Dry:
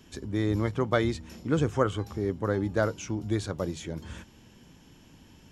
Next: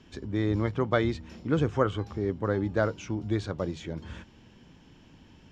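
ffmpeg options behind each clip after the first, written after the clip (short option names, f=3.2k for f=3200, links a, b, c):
-af "lowpass=4.5k"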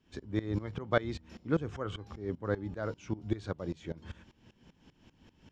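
-af "aeval=exprs='val(0)*pow(10,-19*if(lt(mod(-5.1*n/s,1),2*abs(-5.1)/1000),1-mod(-5.1*n/s,1)/(2*abs(-5.1)/1000),(mod(-5.1*n/s,1)-2*abs(-5.1)/1000)/(1-2*abs(-5.1)/1000))/20)':c=same"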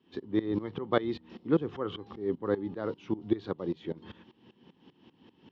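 -af "highpass=200,equalizer=f=370:t=q:w=4:g=3,equalizer=f=620:t=q:w=4:g=-8,equalizer=f=1.5k:t=q:w=4:g=-9,equalizer=f=2.3k:t=q:w=4:g=-8,lowpass=f=3.8k:w=0.5412,lowpass=f=3.8k:w=1.3066,volume=5.5dB"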